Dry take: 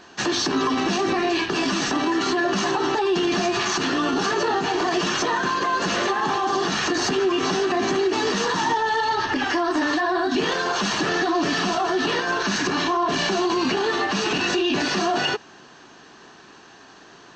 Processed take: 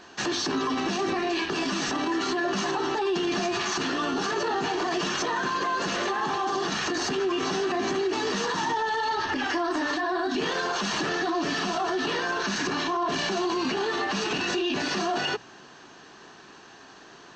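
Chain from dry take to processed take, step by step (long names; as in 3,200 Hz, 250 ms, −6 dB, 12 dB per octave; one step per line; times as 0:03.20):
mains-hum notches 60/120/180/240/300 Hz
brickwall limiter −18 dBFS, peak gain reduction 6 dB
level −1.5 dB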